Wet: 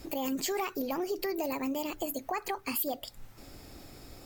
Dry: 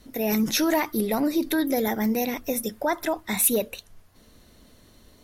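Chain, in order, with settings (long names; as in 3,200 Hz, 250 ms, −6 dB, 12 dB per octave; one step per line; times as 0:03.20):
downward compressor 2.5 to 1, threshold −42 dBFS, peak gain reduction 16.5 dB
change of speed 1.23×
level +4.5 dB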